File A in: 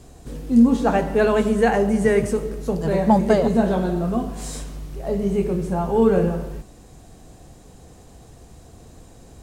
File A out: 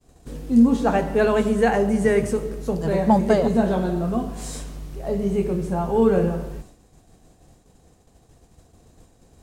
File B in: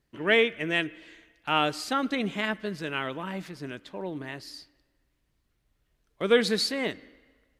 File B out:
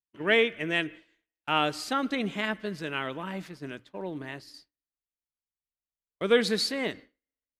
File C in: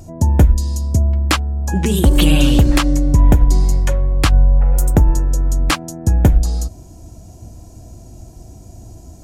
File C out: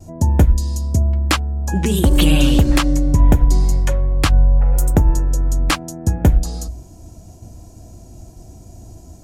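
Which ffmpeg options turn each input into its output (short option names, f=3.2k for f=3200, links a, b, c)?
-af "bandreject=f=60:t=h:w=6,bandreject=f=120:t=h:w=6,agate=range=-33dB:threshold=-38dB:ratio=3:detection=peak,volume=-1dB"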